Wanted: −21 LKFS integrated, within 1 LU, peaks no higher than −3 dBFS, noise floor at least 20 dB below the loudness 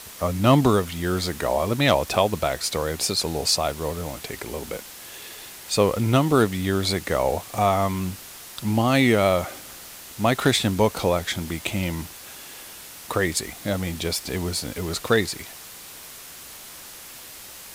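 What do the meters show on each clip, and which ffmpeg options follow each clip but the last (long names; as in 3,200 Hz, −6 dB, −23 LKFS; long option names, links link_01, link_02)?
background noise floor −42 dBFS; target noise floor −43 dBFS; integrated loudness −23.0 LKFS; sample peak −4.0 dBFS; target loudness −21.0 LKFS
→ -af "afftdn=noise_reduction=6:noise_floor=-42"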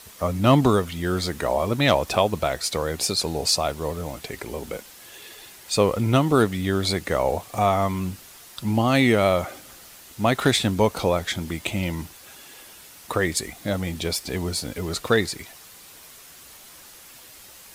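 background noise floor −46 dBFS; integrated loudness −23.0 LKFS; sample peak −4.0 dBFS; target loudness −21.0 LKFS
→ -af "volume=2dB,alimiter=limit=-3dB:level=0:latency=1"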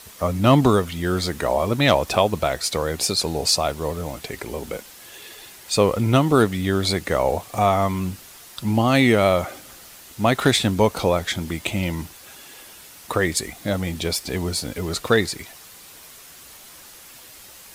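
integrated loudness −21.0 LKFS; sample peak −3.0 dBFS; background noise floor −44 dBFS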